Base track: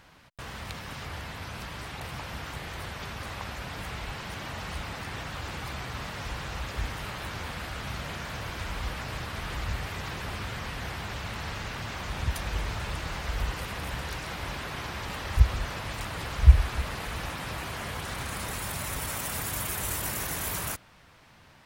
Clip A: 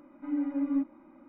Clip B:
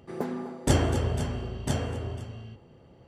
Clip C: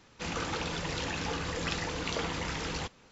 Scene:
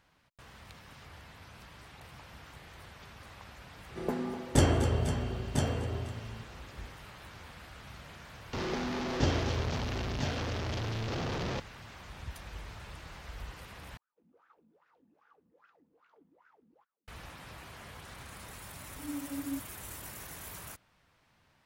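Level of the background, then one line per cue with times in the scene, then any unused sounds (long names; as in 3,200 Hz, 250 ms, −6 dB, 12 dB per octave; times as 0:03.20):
base track −13 dB
0:03.88: mix in B −1.5 dB
0:08.53: mix in B −6 dB + linear delta modulator 32 kbit/s, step −22.5 dBFS
0:13.97: overwrite with C −18 dB + LFO wah 2.5 Hz 210–1,500 Hz, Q 10
0:18.76: mix in A −9 dB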